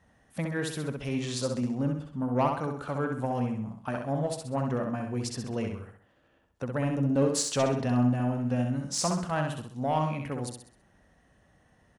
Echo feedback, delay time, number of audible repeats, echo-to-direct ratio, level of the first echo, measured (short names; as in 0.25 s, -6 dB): 41%, 65 ms, 4, -3.5 dB, -4.5 dB